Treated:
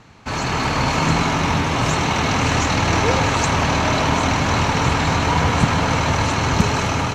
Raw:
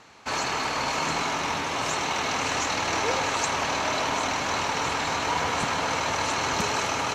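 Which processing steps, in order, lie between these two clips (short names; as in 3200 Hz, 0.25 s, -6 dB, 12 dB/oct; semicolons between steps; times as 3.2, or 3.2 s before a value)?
tone controls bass +15 dB, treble -3 dB; AGC gain up to 5 dB; gain +1.5 dB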